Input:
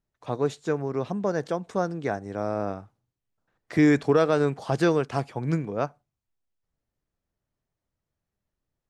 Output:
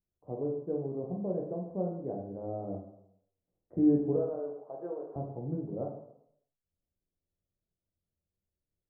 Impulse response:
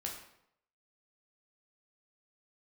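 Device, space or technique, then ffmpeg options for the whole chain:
next room: -filter_complex "[0:a]asettb=1/sr,asplit=3[a][b][c];[a]atrim=end=4.164[d];[b]atrim=start=4.16:end=5.16,asetpts=PTS-STARTPTS,afade=t=in:d=0.004:c=qsin,afade=t=out:st=0.996:d=0.004:c=qsin,highpass=670[e];[c]atrim=start=5.156[f];[d][e]acrossfade=d=0.004:c1=hsin:c2=qsin[g];[g][f]acrossfade=d=0.004:c1=qsin:c2=hsin,lowpass=f=630:w=0.5412,lowpass=f=630:w=1.3066[h];[1:a]atrim=start_sample=2205[i];[h][i]afir=irnorm=-1:irlink=0,volume=-6dB"

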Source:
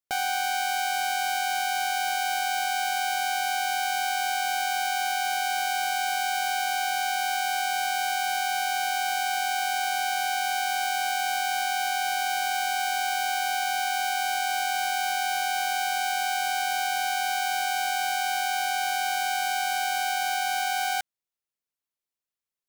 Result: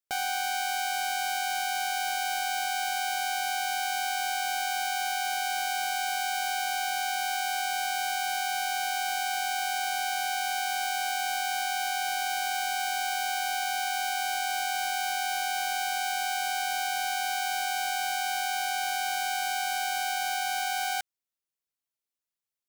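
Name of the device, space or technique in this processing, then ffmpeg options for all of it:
exciter from parts: -filter_complex "[0:a]asplit=2[a][b];[b]highpass=f=4.4k:p=1,asoftclip=type=tanh:threshold=-25dB,volume=-6.5dB[c];[a][c]amix=inputs=2:normalize=0,volume=-3.5dB"

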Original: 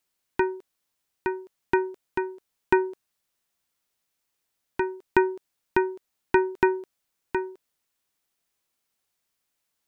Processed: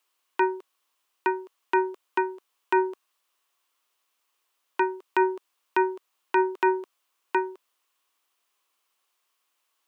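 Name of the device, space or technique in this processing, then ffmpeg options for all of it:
laptop speaker: -af "highpass=f=300:w=0.5412,highpass=f=300:w=1.3066,equalizer=f=1.1k:t=o:w=0.49:g=11,equalizer=f=2.9k:t=o:w=0.6:g=6,alimiter=limit=-13dB:level=0:latency=1:release=28,volume=2dB"

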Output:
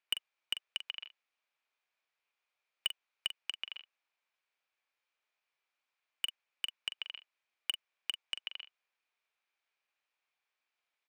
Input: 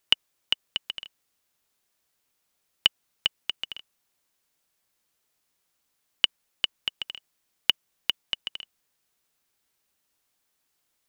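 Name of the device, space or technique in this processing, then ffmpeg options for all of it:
megaphone: -filter_complex "[0:a]highpass=640,lowpass=3.2k,equalizer=f=2.4k:t=o:w=0.2:g=8.5,asoftclip=type=hard:threshold=-16.5dB,asplit=2[a][b];[b]adelay=43,volume=-9.5dB[c];[a][c]amix=inputs=2:normalize=0,volume=-6dB"

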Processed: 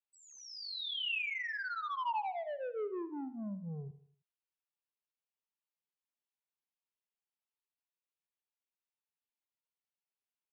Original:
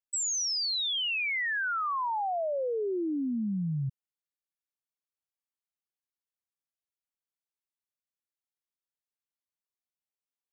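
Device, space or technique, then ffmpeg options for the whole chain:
barber-pole flanger into a guitar amplifier: -filter_complex "[0:a]asplit=2[a][b];[b]adelay=9.7,afreqshift=0.78[c];[a][c]amix=inputs=2:normalize=1,asoftclip=type=tanh:threshold=-33.5dB,highpass=f=400:p=1,bass=f=250:g=5,treble=f=4k:g=1,highpass=110,equalizer=f=180:t=q:w=4:g=5,equalizer=f=410:t=q:w=4:g=5,equalizer=f=910:t=q:w=4:g=7,equalizer=f=2.7k:t=q:w=4:g=5,lowpass=f=4.1k:w=0.5412,lowpass=f=4.1k:w=1.3066,aecho=1:1:78|156|234|312:0.188|0.081|0.0348|0.015,volume=-2.5dB"

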